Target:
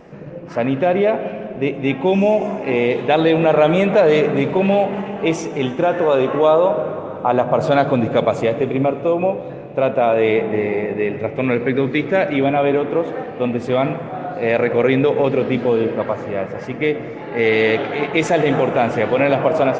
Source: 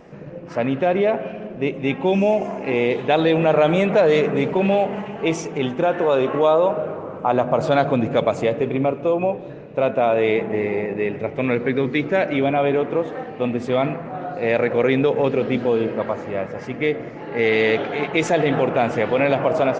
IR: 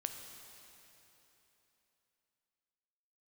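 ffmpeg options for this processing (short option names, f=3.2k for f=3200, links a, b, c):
-filter_complex "[0:a]asplit=2[a][b];[1:a]atrim=start_sample=2205,highshelf=f=5.8k:g=-8.5[c];[b][c]afir=irnorm=-1:irlink=0,volume=-3dB[d];[a][d]amix=inputs=2:normalize=0,volume=-1.5dB"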